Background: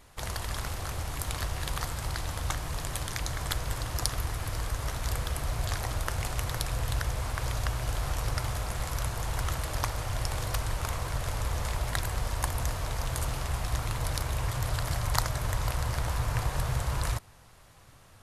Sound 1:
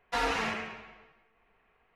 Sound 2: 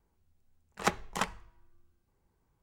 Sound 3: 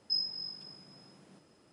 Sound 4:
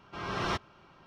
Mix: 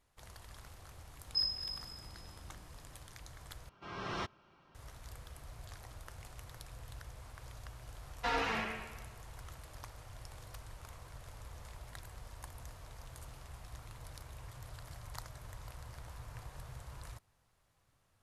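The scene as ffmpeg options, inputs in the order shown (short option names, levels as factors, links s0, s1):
-filter_complex "[0:a]volume=0.112[s0];[3:a]highshelf=f=5000:g=5.5[s1];[1:a]lowpass=6000[s2];[s0]asplit=2[s3][s4];[s3]atrim=end=3.694[s5];[4:a]atrim=end=1.06,asetpts=PTS-STARTPTS,volume=0.422[s6];[s4]atrim=start=4.746[s7];[s1]atrim=end=1.72,asetpts=PTS-STARTPTS,volume=0.631,afade=t=in:d=0.004:c=hsin,afade=t=out:st=1.716:d=0.004:c=hsin,adelay=1250[s8];[s2]atrim=end=1.95,asetpts=PTS-STARTPTS,volume=0.631,afade=t=in:d=0.004:c=hsin,afade=t=out:st=1.946:d=0.004:c=hsin,adelay=8110[s9];[s5][s6]acrossfade=d=0.004:c1=hsin:c2=hsin[s10];[s10][s7]acrossfade=d=0.004:c1=hsin:c2=hsin[s11];[s11][s8][s9]amix=inputs=3:normalize=0"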